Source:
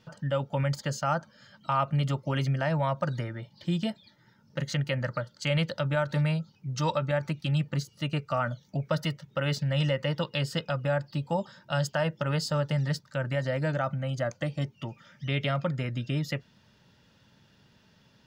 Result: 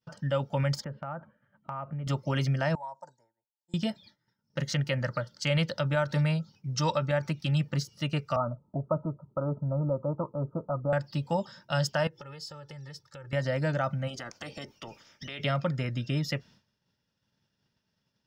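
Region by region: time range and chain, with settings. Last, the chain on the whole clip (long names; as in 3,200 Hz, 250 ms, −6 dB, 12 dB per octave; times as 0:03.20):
0:00.84–0:02.07: Bessel low-pass filter 1,400 Hz, order 8 + downward compressor 4 to 1, threshold −34 dBFS
0:02.75–0:03.74: pair of resonant band-passes 2,600 Hz, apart 3 octaves + parametric band 1,200 Hz −14 dB 0.44 octaves
0:08.36–0:10.93: Butterworth low-pass 1,300 Hz 96 dB per octave + comb filter 3.1 ms, depth 31%
0:12.07–0:13.33: comb filter 2.3 ms, depth 93% + downward compressor 4 to 1, threshold −45 dBFS
0:14.07–0:15.39: ceiling on every frequency bin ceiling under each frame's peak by 19 dB + downward compressor 3 to 1, threshold −40 dBFS
whole clip: downward expander −49 dBFS; parametric band 5,400 Hz +9.5 dB 0.22 octaves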